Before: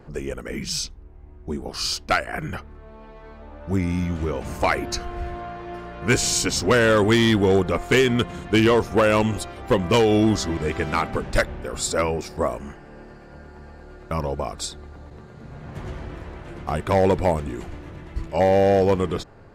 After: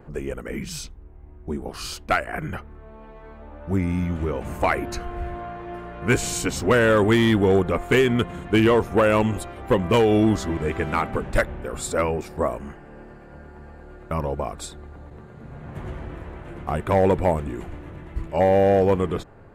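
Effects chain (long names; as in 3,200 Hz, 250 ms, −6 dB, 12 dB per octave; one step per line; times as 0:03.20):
parametric band 5,100 Hz −11 dB 1 octave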